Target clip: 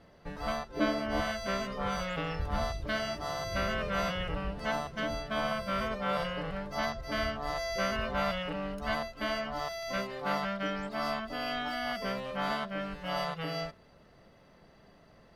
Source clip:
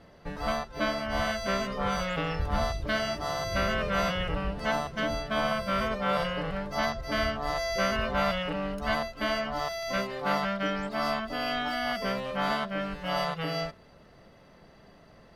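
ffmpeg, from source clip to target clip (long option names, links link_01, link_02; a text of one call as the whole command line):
ffmpeg -i in.wav -filter_complex "[0:a]asettb=1/sr,asplit=3[link_01][link_02][link_03];[link_01]atrim=end=0.694[link_04];[link_02]atrim=start=0.69:end=1.21,asetpts=PTS-STARTPTS,afade=type=in:duration=0.004:curve=qsin,afade=type=out:start_time=0.516:duration=0.004:curve=qsin,equalizer=frequency=350:width_type=o:width=0.83:gain=14[link_05];[link_03]atrim=start=1.206[link_06];[link_04][link_05]acrossfade=duration=0.004:curve1=hsin:curve2=qsin[link_07];[link_07][link_06]acrossfade=duration=0.004:curve1=qsin:curve2=hsin,volume=-4dB" out.wav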